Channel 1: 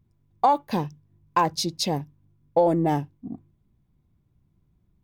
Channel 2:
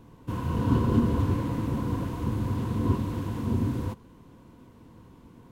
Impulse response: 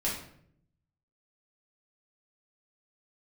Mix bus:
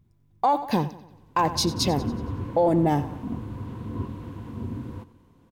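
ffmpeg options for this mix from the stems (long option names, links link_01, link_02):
-filter_complex "[0:a]volume=3dB,asplit=2[link_01][link_02];[link_02]volume=-17.5dB[link_03];[1:a]acrossover=split=3600[link_04][link_05];[link_05]acompressor=threshold=-60dB:ratio=4:attack=1:release=60[link_06];[link_04][link_06]amix=inputs=2:normalize=0,adelay=1100,volume=-6.5dB,asplit=2[link_07][link_08];[link_08]volume=-18dB[link_09];[link_03][link_09]amix=inputs=2:normalize=0,aecho=0:1:92|184|276|368|460|552|644:1|0.5|0.25|0.125|0.0625|0.0312|0.0156[link_10];[link_01][link_07][link_10]amix=inputs=3:normalize=0,alimiter=limit=-13dB:level=0:latency=1:release=51"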